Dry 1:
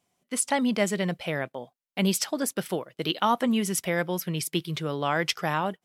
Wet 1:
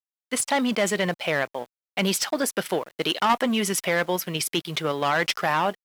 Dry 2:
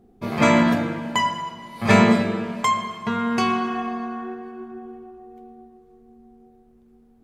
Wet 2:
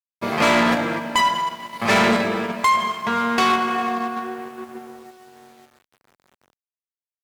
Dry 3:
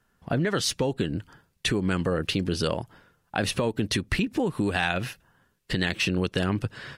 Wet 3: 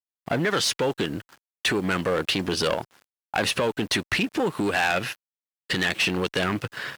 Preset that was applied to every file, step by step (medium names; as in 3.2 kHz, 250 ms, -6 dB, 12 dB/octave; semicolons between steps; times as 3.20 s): bass shelf 370 Hz -10.5 dB; waveshaping leveller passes 2; in parallel at +2 dB: level held to a coarse grid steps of 9 dB; on the sum: treble shelf 4.8 kHz -6.5 dB; word length cut 8-bit, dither none; one-sided clip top -16 dBFS; high-pass 130 Hz 6 dB/octave; trim -3.5 dB